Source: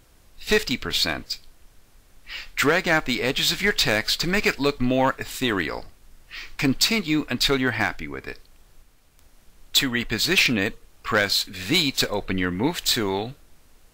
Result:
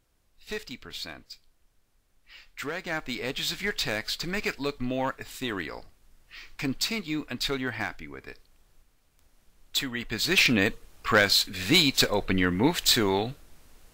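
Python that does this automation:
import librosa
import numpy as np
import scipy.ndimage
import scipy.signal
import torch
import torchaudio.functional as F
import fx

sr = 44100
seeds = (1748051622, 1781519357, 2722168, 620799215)

y = fx.gain(x, sr, db=fx.line((2.64, -15.0), (3.17, -8.5), (9.98, -8.5), (10.58, 0.0)))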